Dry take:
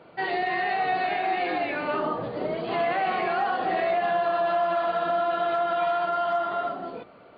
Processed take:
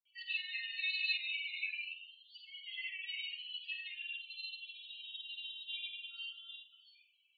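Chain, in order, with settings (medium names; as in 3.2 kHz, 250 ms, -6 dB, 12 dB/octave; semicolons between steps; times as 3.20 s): steep high-pass 2.7 kHz 36 dB/octave; loudest bins only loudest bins 8; granulator, pitch spread up and down by 0 st; on a send: flutter echo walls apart 8.1 m, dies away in 0.33 s; on the sum: FDN reverb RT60 0.42 s, high-frequency decay 0.55×, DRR 2.5 dB; upward expansion 1.5:1, over -59 dBFS; trim +10 dB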